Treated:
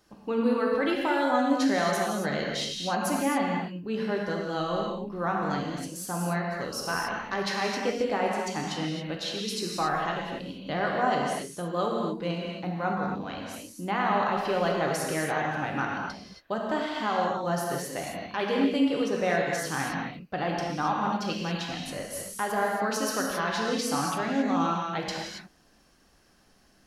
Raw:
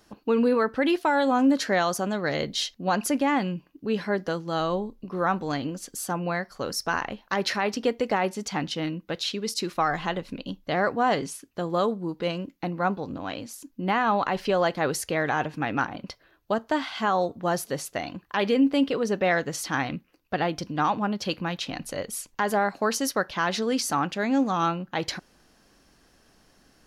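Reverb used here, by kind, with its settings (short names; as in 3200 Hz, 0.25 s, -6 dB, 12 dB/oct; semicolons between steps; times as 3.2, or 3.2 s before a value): non-linear reverb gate 0.3 s flat, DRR -2 dB; gain -6 dB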